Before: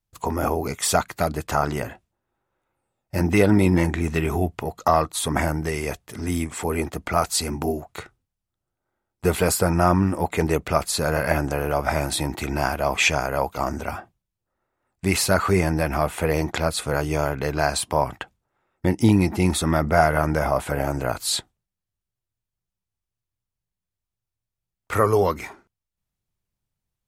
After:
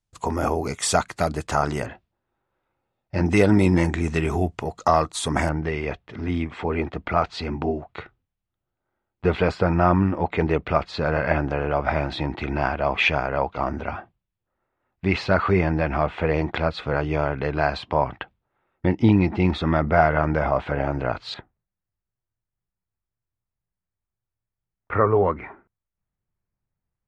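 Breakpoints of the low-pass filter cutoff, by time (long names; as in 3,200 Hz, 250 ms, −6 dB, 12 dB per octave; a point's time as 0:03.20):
low-pass filter 24 dB per octave
9,300 Hz
from 0:01.86 4,600 Hz
from 0:03.26 8,500 Hz
from 0:05.49 3,600 Hz
from 0:21.34 2,100 Hz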